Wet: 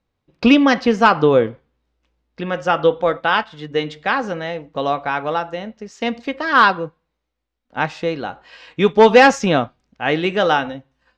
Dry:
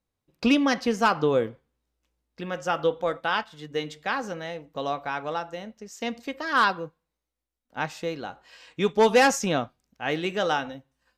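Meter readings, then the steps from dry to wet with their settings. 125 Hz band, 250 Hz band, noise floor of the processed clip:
+9.0 dB, +9.0 dB, −76 dBFS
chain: low-pass filter 4,000 Hz 12 dB per octave
level +9 dB

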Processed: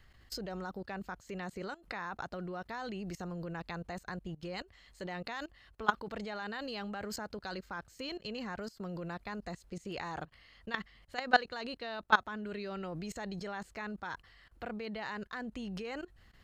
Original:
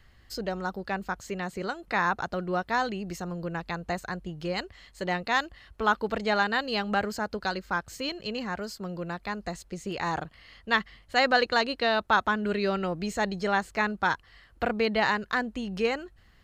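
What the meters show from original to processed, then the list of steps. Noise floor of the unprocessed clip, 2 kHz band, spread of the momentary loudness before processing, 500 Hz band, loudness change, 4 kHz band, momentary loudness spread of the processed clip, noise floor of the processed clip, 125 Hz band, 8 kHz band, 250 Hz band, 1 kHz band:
−58 dBFS, −9.5 dB, 11 LU, −11.5 dB, −10.0 dB, −10.5 dB, 10 LU, −63 dBFS, −7.5 dB, −8.5 dB, −9.0 dB, −9.5 dB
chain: output level in coarse steps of 20 dB

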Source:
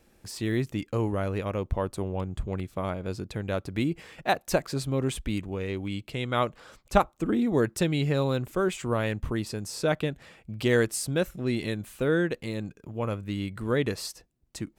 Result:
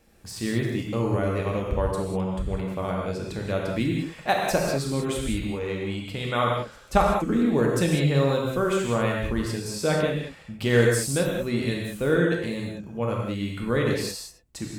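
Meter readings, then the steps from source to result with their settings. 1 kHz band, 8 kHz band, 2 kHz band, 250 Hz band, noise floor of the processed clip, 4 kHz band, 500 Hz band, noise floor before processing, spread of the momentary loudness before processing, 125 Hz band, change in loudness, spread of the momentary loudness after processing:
+4.0 dB, +4.0 dB, +4.0 dB, +3.0 dB, −48 dBFS, +3.5 dB, +3.5 dB, −65 dBFS, 9 LU, +3.5 dB, +3.5 dB, 9 LU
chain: reverb whose tail is shaped and stops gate 220 ms flat, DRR −1.5 dB

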